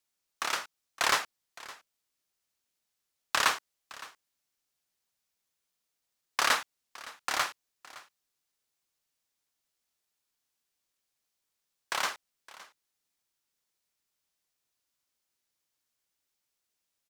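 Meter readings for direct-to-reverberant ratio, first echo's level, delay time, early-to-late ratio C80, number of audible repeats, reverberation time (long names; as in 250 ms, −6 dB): no reverb audible, −19.5 dB, 564 ms, no reverb audible, 1, no reverb audible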